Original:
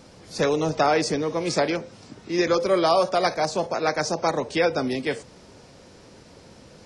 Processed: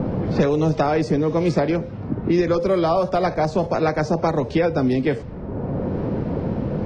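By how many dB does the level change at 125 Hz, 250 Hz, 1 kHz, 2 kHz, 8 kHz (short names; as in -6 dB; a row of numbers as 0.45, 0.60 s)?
+12.0 dB, +7.5 dB, +0.5 dB, -2.0 dB, n/a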